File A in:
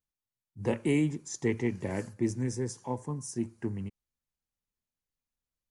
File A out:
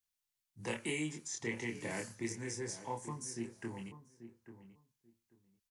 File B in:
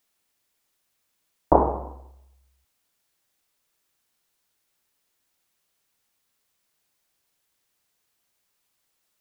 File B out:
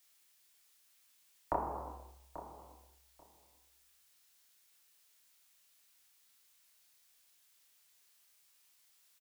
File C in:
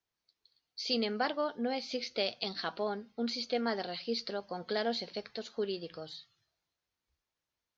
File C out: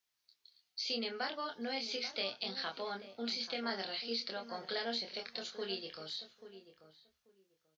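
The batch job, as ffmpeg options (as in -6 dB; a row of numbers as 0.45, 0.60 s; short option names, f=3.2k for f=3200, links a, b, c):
-filter_complex "[0:a]tiltshelf=f=1.1k:g=-7,acrossover=split=250|960|3900[a][b][c][d];[a]acompressor=threshold=-45dB:ratio=4[e];[b]acompressor=threshold=-39dB:ratio=4[f];[c]acompressor=threshold=-39dB:ratio=4[g];[d]acompressor=threshold=-44dB:ratio=4[h];[e][f][g][h]amix=inputs=4:normalize=0,asplit=2[i][j];[j]adelay=26,volume=-3.5dB[k];[i][k]amix=inputs=2:normalize=0,asplit=2[l][m];[m]adelay=837,lowpass=f=1.2k:p=1,volume=-11.5dB,asplit=2[n][o];[o]adelay=837,lowpass=f=1.2k:p=1,volume=0.18[p];[n][p]amix=inputs=2:normalize=0[q];[l][q]amix=inputs=2:normalize=0,volume=-2.5dB"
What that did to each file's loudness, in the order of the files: -8.0, -20.0, -3.5 LU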